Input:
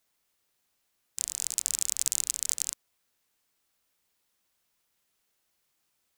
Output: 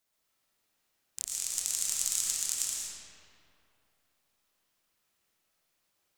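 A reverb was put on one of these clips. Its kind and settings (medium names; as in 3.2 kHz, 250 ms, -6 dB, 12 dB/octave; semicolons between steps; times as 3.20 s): algorithmic reverb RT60 2.7 s, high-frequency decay 0.6×, pre-delay 70 ms, DRR -5 dB; trim -5 dB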